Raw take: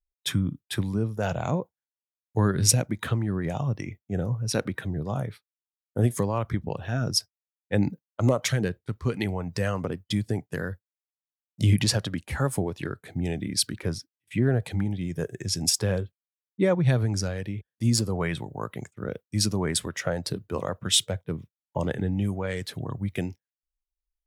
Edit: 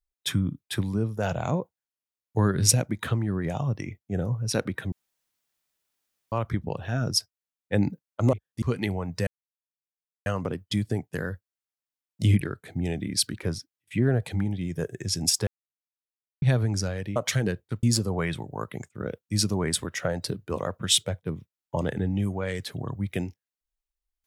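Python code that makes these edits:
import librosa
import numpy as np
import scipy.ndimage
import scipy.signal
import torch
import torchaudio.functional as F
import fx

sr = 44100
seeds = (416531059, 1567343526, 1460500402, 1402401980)

y = fx.edit(x, sr, fx.room_tone_fill(start_s=4.92, length_s=1.4),
    fx.swap(start_s=8.33, length_s=0.67, other_s=17.56, other_length_s=0.29),
    fx.insert_silence(at_s=9.65, length_s=0.99),
    fx.cut(start_s=11.8, length_s=1.01),
    fx.silence(start_s=15.87, length_s=0.95), tone=tone)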